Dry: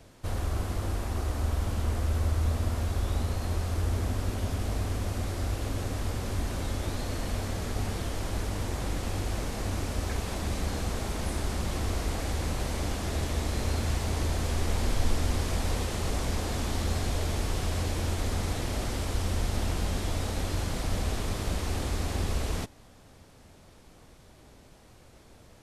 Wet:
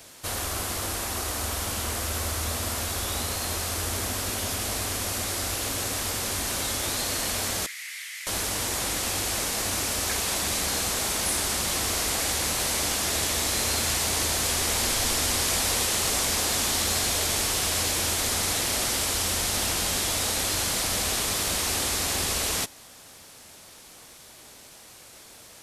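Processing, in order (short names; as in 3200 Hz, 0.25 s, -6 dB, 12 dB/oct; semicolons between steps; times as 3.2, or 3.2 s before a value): tilt +3.5 dB/oct; 7.66–8.27 ladder high-pass 1900 Hz, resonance 75%; gain +6 dB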